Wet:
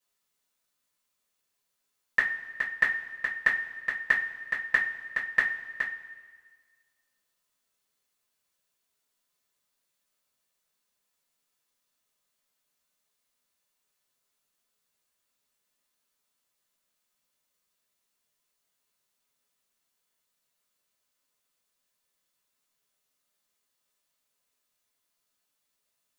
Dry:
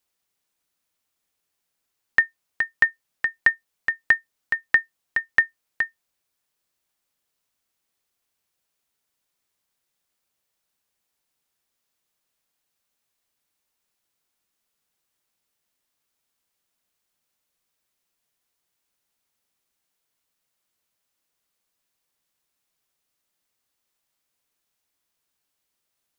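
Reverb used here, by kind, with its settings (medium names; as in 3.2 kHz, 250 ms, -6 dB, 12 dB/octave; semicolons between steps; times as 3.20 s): two-slope reverb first 0.24 s, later 1.6 s, from -18 dB, DRR -8 dB; trim -9.5 dB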